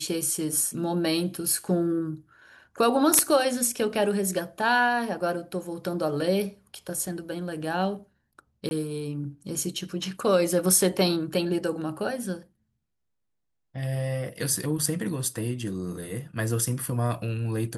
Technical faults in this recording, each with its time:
8.69–8.71 gap 21 ms

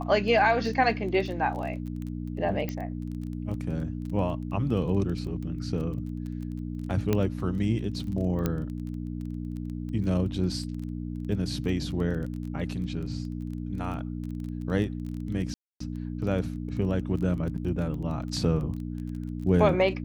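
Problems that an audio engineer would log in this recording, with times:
crackle 17/s -35 dBFS
hum 60 Hz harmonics 5 -34 dBFS
2.69 pop -18 dBFS
7.13 pop -12 dBFS
8.46 pop -13 dBFS
15.54–15.8 gap 0.264 s

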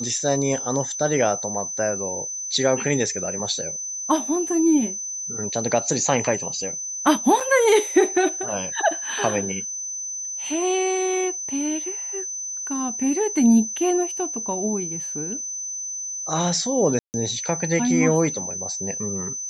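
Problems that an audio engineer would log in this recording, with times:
tone 6100 Hz -28 dBFS
7.4–7.41 gap 5.5 ms
16.99–17.14 gap 0.149 s

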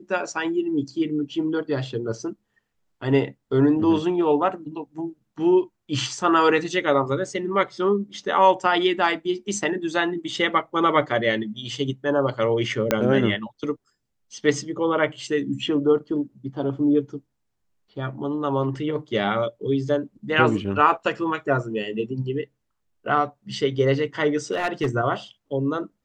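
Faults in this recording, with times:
12.91 pop -4 dBFS
24.51–24.89 clipped -17.5 dBFS

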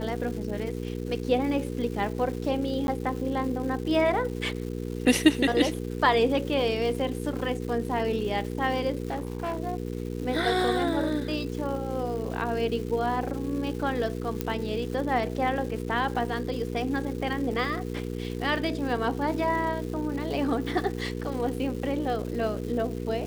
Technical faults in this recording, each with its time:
crackle 470/s -37 dBFS
hum 60 Hz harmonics 8 -33 dBFS
2.87–2.88 gap
9.1–9.59 clipped -26.5 dBFS
14.41 pop -13 dBFS

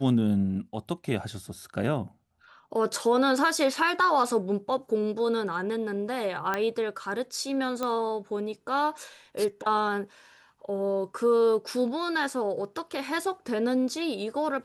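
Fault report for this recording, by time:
6.54 pop -14 dBFS
7.83 pop -16 dBFS

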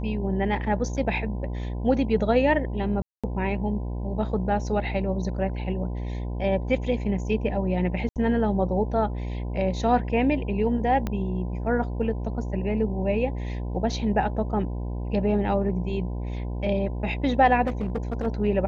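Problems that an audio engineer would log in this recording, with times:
buzz 60 Hz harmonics 17 -30 dBFS
3.02–3.24 gap 0.216 s
8.09–8.16 gap 68 ms
11.07 pop -15 dBFS
17.66–18.27 clipped -23 dBFS

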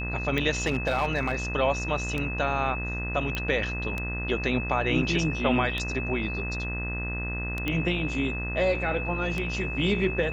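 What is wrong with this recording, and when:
buzz 60 Hz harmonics 34 -33 dBFS
tick 33 1/3 rpm -16 dBFS
tone 2600 Hz -33 dBFS
0.62–1.35 clipped -19.5 dBFS
3.35 pop -15 dBFS
7.68 pop -15 dBFS

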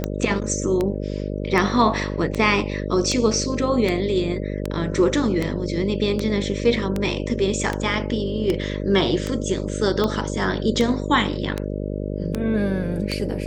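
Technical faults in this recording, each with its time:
buzz 50 Hz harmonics 12 -27 dBFS
tick 78 rpm -10 dBFS

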